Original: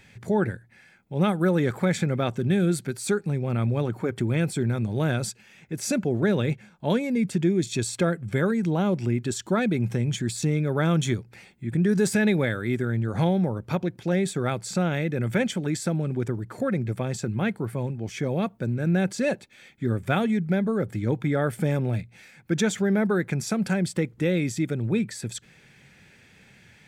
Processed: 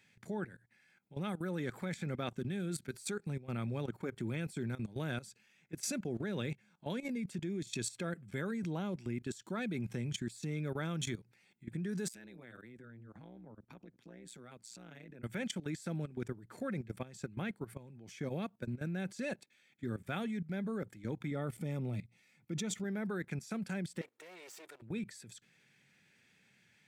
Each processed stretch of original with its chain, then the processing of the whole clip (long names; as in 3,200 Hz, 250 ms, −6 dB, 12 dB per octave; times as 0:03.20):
0:12.08–0:15.23: downward compressor 3 to 1, threshold −31 dBFS + amplitude modulation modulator 120 Hz, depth 85% + multiband upward and downward expander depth 70%
0:21.31–0:22.84: Butterworth band-reject 1,600 Hz, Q 6.3 + low-shelf EQ 380 Hz +6 dB
0:24.01–0:24.82: lower of the sound and its delayed copy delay 2.2 ms + high-pass filter 480 Hz
whole clip: high-pass filter 160 Hz 12 dB per octave; parametric band 560 Hz −5.5 dB 2.4 octaves; output level in coarse steps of 16 dB; level −5 dB